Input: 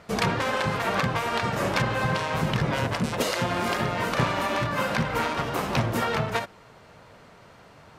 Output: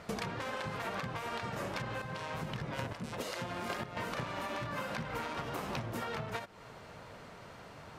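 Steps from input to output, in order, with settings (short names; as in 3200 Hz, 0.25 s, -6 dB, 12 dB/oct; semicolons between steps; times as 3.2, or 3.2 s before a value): 1.88–3.97 chopper 1.1 Hz, depth 65%, duty 15%; compressor 12:1, threshold -35 dBFS, peak gain reduction 16.5 dB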